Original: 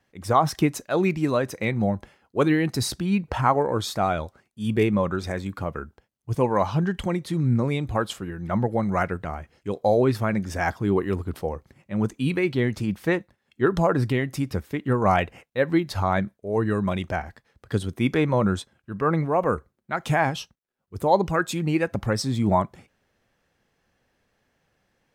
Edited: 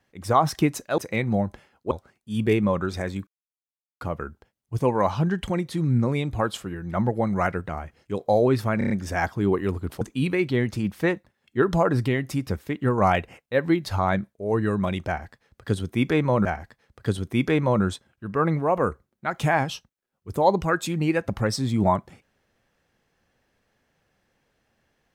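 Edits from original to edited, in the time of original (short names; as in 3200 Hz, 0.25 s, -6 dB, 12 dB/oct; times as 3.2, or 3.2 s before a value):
0.98–1.47 cut
2.4–4.21 cut
5.57 insert silence 0.74 s
10.34 stutter 0.03 s, 5 plays
11.45–12.05 cut
17.11–18.49 loop, 2 plays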